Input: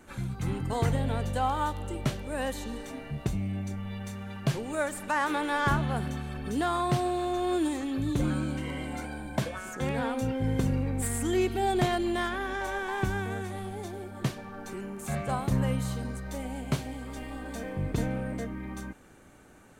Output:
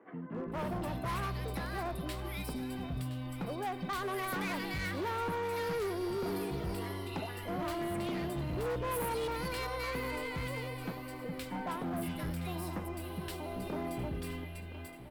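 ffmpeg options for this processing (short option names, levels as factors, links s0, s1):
-filter_complex "[0:a]equalizer=f=4700:t=o:w=0.43:g=-9.5,asetrate=57771,aresample=44100,acrossover=split=180|1700[s0][s1][s2];[s0]adelay=410[s3];[s2]adelay=520[s4];[s3][s1][s4]amix=inputs=3:normalize=0,volume=29.9,asoftclip=hard,volume=0.0335,asplit=2[s5][s6];[s6]aecho=0:1:1019:0.224[s7];[s5][s7]amix=inputs=2:normalize=0,volume=0.708"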